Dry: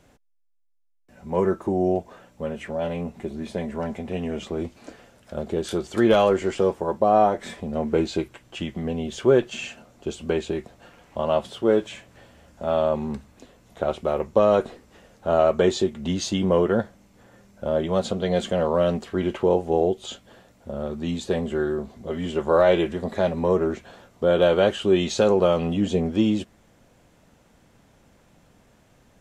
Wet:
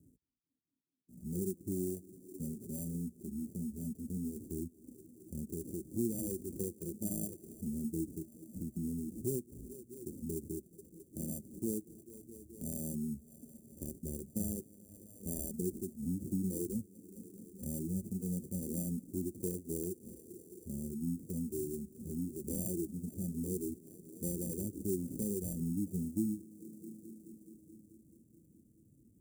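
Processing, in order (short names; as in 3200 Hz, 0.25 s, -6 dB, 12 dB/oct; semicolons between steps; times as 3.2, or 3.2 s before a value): tape echo 0.215 s, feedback 84%, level -16.5 dB, low-pass 1700 Hz; reverb removal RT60 0.87 s; sample-and-hold 33×; harmonic-percussive split percussive -13 dB; elliptic band-stop 310–8100 Hz, stop band 60 dB; compressor 2:1, threshold -42 dBFS, peak gain reduction 12.5 dB; HPF 77 Hz; gain +2 dB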